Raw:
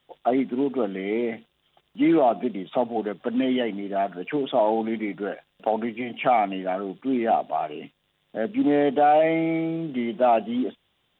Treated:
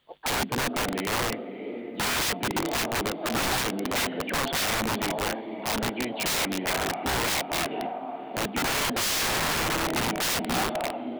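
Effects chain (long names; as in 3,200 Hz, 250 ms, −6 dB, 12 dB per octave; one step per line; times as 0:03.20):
feedback delay with all-pass diffusion 548 ms, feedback 45%, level −11 dB
pitch-shifted copies added +4 semitones −11 dB
wrap-around overflow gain 21.5 dB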